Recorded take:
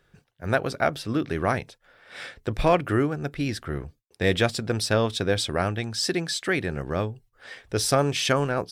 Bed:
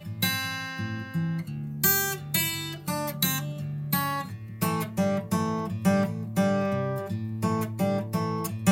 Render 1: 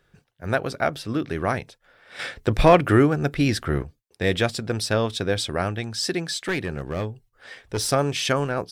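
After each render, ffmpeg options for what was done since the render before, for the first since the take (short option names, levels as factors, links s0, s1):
-filter_complex "[0:a]asettb=1/sr,asplit=3[s0][s1][s2];[s0]atrim=end=2.194[s3];[s1]atrim=start=2.19:end=3.83,asetpts=PTS-STARTPTS,afade=t=in:d=0.004:c=qsin,afade=t=out:st=1.636:d=0.004:c=qsin,acontrast=73[s4];[s2]atrim=start=3.826[s5];[s3][s4]acrossfade=d=0.004:c1=hsin:c2=qsin[s6];[s6][s5]acrossfade=d=0.004:c1=qsin:c2=hsin,asettb=1/sr,asplit=3[s7][s8][s9];[s7]atrim=end=6.284[s10];[s8]atrim=start=6.28:end=7.9,asetpts=PTS-STARTPTS,afade=t=in:d=0.004:c=qsin,afade=t=out:st=1.616:d=0.004:c=qsin,aeval=exprs='clip(val(0),-1,0.0891)':c=same[s11];[s9]atrim=start=7.896[s12];[s10][s11]acrossfade=d=0.004:c1=hsin:c2=qsin[s13];[s13][s12]acrossfade=d=0.004:c1=qsin:c2=hsin"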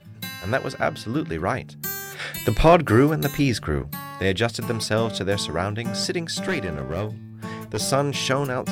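-filter_complex "[1:a]volume=0.422[s0];[0:a][s0]amix=inputs=2:normalize=0"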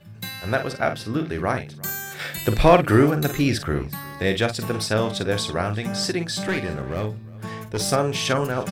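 -filter_complex "[0:a]asplit=2[s0][s1];[s1]adelay=47,volume=0.355[s2];[s0][s2]amix=inputs=2:normalize=0,aecho=1:1:354:0.0708"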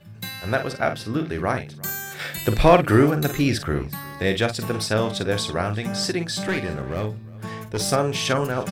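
-af anull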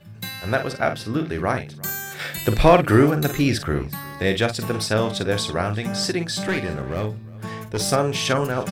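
-af "volume=1.12,alimiter=limit=0.708:level=0:latency=1"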